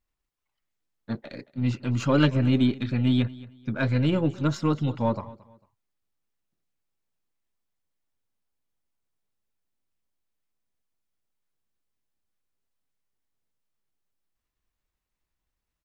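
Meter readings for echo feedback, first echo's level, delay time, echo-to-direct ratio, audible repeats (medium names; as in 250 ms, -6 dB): 29%, -20.0 dB, 224 ms, -19.5 dB, 2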